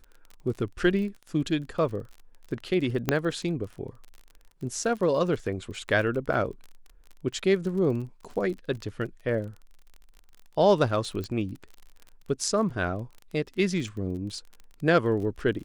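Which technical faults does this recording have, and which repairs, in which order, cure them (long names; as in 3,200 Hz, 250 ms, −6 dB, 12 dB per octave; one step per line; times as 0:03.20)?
surface crackle 32 per second −36 dBFS
0:03.09: click −8 dBFS
0:11.24: click −21 dBFS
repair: click removal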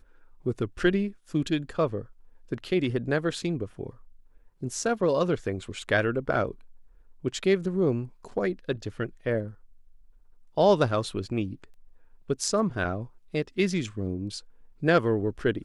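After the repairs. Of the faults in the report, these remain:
0:11.24: click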